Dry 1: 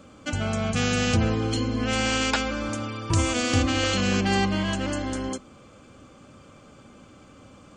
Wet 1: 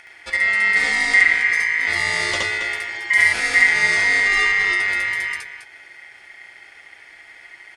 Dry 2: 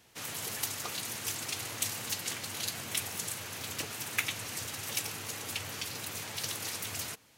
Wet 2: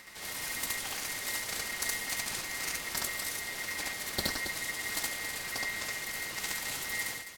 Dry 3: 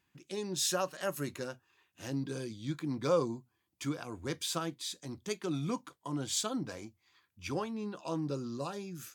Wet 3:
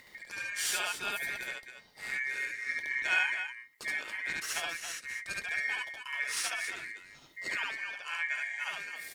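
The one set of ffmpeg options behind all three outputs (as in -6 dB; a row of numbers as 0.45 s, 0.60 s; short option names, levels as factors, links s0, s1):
-filter_complex "[0:a]acompressor=mode=upward:threshold=0.00794:ratio=2.5,lowshelf=f=140:t=q:w=1.5:g=8.5,asplit=2[s0][s1];[s1]aecho=0:1:69.97|274.1:1|0.398[s2];[s0][s2]amix=inputs=2:normalize=0,aeval=exprs='val(0)*sin(2*PI*2000*n/s)':c=same"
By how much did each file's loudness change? +8.5 LU, +1.5 LU, +2.5 LU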